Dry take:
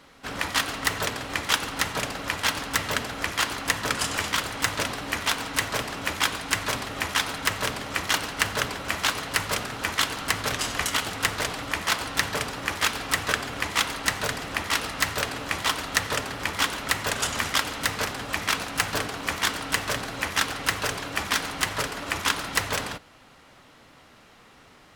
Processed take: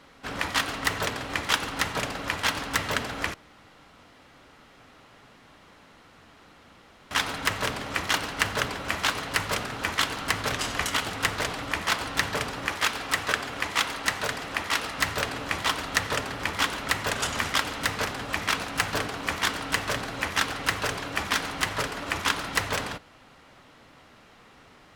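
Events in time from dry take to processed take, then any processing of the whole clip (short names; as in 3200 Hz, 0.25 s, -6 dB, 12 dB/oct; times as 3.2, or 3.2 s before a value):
3.34–7.11 room tone
12.68–14.98 low shelf 240 Hz -6 dB
whole clip: high shelf 5600 Hz -5.5 dB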